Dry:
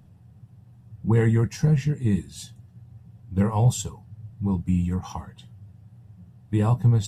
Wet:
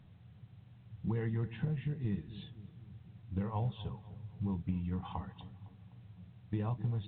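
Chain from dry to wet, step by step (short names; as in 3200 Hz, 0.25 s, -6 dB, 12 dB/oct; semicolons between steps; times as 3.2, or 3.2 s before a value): compressor 10:1, threshold -25 dBFS, peak gain reduction 11.5 dB; on a send: darkening echo 0.254 s, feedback 56%, low-pass 980 Hz, level -14.5 dB; on the sum: gain -6.5 dB; A-law 64 kbps 8000 Hz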